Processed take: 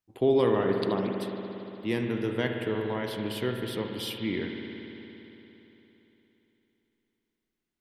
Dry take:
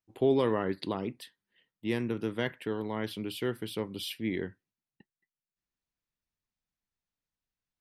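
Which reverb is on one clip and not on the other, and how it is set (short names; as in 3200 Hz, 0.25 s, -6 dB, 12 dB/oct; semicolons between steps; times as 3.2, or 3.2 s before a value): spring tank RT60 3.5 s, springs 57 ms, chirp 20 ms, DRR 2.5 dB; gain +1.5 dB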